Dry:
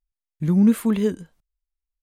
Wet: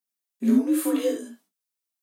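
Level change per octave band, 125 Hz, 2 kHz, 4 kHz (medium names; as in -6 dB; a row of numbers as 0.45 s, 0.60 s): under -15 dB, -2.0 dB, no reading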